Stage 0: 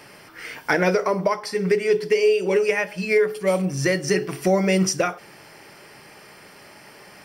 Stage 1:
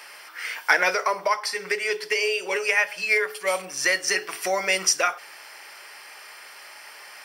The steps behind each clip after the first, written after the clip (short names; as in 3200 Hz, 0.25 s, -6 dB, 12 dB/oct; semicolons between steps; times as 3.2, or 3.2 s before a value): HPF 960 Hz 12 dB/oct; gain +4.5 dB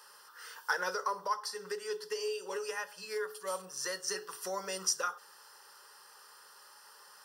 fixed phaser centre 450 Hz, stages 8; gain -8.5 dB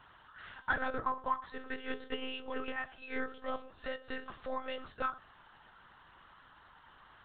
monotone LPC vocoder at 8 kHz 260 Hz